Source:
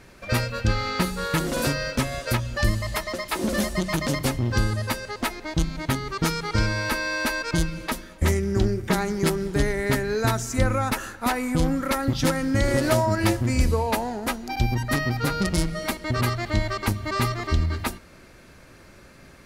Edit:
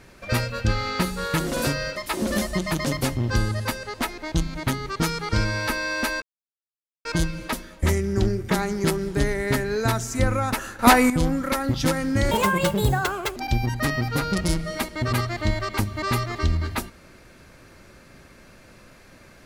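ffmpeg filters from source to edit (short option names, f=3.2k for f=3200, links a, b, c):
-filter_complex "[0:a]asplit=7[a][b][c][d][e][f][g];[a]atrim=end=1.962[h];[b]atrim=start=3.178:end=7.44,asetpts=PTS-STARTPTS,afade=t=out:st=4.258:d=0.004:c=hsin,apad=pad_dur=0.83[i];[c]atrim=start=7.44:end=11.182,asetpts=PTS-STARTPTS,afade=t=in:d=0.004:c=hsin[j];[d]atrim=start=11.178:end=11.492,asetpts=PTS-STARTPTS,volume=10dB[k];[e]atrim=start=11.488:end=12.704[l];[f]atrim=start=12.7:end=14.45,asetpts=PTS-STARTPTS,asetrate=73206,aresample=44100[m];[g]atrim=start=14.446[n];[i][j]concat=n=2:v=0:a=1[o];[h][o]acrossfade=d=0.004:c1=hsin:c2=hsin[p];[p][k]acrossfade=d=0.004:c1=hsin:c2=hsin[q];[q][l]acrossfade=d=0.004:c1=hsin:c2=hsin[r];[r][m]acrossfade=d=0.004:c1=hsin:c2=hsin[s];[s][n]acrossfade=d=0.004:c1=hsin:c2=hsin"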